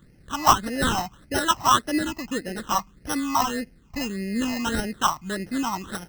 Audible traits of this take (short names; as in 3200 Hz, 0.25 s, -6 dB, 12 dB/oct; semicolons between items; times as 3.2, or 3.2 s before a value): aliases and images of a low sample rate 2300 Hz, jitter 0%; phasing stages 8, 1.7 Hz, lowest notch 450–1100 Hz